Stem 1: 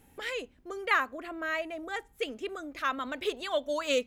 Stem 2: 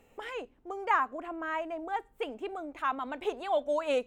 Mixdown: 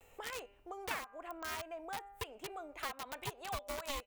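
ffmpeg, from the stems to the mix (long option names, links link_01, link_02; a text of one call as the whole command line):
ffmpeg -i stem1.wav -i stem2.wav -filter_complex "[0:a]highshelf=frequency=7900:gain=3.5,aeval=exprs='val(0)*sin(2*PI*550*n/s)':channel_layout=same,aeval=exprs='val(0)*gte(abs(val(0)),0.0376)':channel_layout=same,volume=-5dB[link_01];[1:a]bandreject=frequency=200.1:width_type=h:width=4,bandreject=frequency=400.2:width_type=h:width=4,bandreject=frequency=600.3:width_type=h:width=4,bandreject=frequency=800.4:width_type=h:width=4,bandreject=frequency=1000.5:width_type=h:width=4,bandreject=frequency=1200.6:width_type=h:width=4,bandreject=frequency=1400.7:width_type=h:width=4,bandreject=frequency=1600.8:width_type=h:width=4,bandreject=frequency=1800.9:width_type=h:width=4,bandreject=frequency=2001:width_type=h:width=4,bandreject=frequency=2201.1:width_type=h:width=4,bandreject=frequency=2401.2:width_type=h:width=4,bandreject=frequency=2601.3:width_type=h:width=4,bandreject=frequency=2801.4:width_type=h:width=4,bandreject=frequency=3001.5:width_type=h:width=4,acompressor=threshold=-44dB:ratio=3,equalizer=frequency=240:width_type=o:width=1.1:gain=-13,volume=-1,adelay=8,volume=2dB[link_02];[link_01][link_02]amix=inputs=2:normalize=0,highshelf=frequency=7900:gain=6,acompressor=threshold=-36dB:ratio=5" out.wav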